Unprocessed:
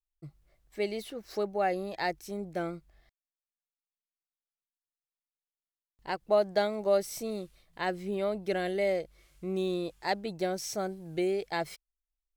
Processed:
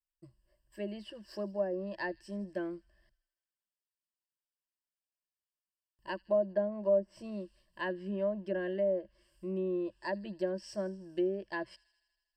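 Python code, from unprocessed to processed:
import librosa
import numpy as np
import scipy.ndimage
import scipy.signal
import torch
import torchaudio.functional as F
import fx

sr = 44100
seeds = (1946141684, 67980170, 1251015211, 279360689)

p1 = fx.env_lowpass_down(x, sr, base_hz=740.0, full_db=-24.0)
p2 = fx.ripple_eq(p1, sr, per_octave=1.3, db=17)
p3 = p2 + fx.echo_wet_highpass(p2, sr, ms=80, feedback_pct=71, hz=3500.0, wet_db=-18.0, dry=0)
y = p3 * librosa.db_to_amplitude(-8.0)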